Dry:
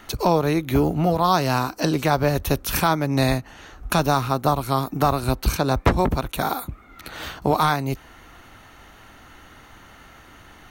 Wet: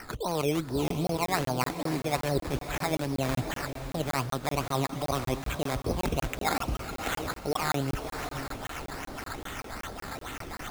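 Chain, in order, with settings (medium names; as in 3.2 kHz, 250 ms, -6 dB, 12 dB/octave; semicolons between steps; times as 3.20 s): reverse; compression 10:1, threshold -33 dBFS, peak gain reduction 21.5 dB; reverse; transient shaper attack -5 dB, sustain +1 dB; LFO low-pass sine 3.7 Hz 430–5200 Hz; decimation with a swept rate 12×, swing 60% 2.5 Hz; on a send: echo that smears into a reverb 574 ms, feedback 46%, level -10 dB; on the sum: crackling interface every 0.19 s, samples 1024, zero, from 0.88 s; trim +7 dB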